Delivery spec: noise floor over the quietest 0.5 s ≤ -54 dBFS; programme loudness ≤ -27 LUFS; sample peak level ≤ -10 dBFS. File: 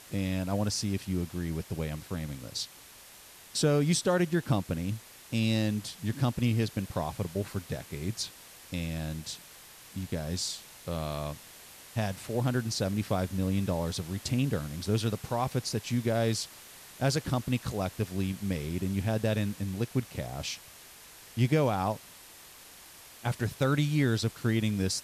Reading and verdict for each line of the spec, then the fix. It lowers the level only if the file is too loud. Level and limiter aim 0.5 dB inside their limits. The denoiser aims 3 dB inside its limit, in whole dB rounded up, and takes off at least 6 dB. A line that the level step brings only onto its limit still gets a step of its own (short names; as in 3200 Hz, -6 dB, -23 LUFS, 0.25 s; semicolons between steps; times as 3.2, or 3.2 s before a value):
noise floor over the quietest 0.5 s -52 dBFS: fail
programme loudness -31.5 LUFS: OK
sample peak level -13.5 dBFS: OK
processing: denoiser 6 dB, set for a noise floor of -52 dBFS